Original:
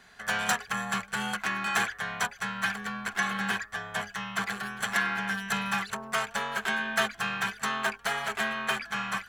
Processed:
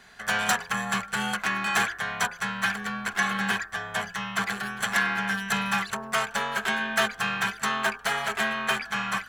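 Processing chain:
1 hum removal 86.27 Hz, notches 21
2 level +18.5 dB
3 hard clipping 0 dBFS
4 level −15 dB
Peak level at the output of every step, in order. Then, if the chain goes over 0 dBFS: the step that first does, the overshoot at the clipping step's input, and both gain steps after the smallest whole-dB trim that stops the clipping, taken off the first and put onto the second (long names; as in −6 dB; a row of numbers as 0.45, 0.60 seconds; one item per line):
−12.5, +6.0, 0.0, −15.0 dBFS
step 2, 6.0 dB
step 2 +12.5 dB, step 4 −9 dB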